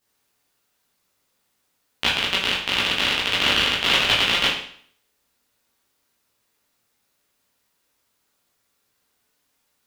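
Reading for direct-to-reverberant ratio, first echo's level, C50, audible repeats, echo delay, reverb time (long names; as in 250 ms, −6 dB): −7.0 dB, no echo audible, 4.0 dB, no echo audible, no echo audible, 0.55 s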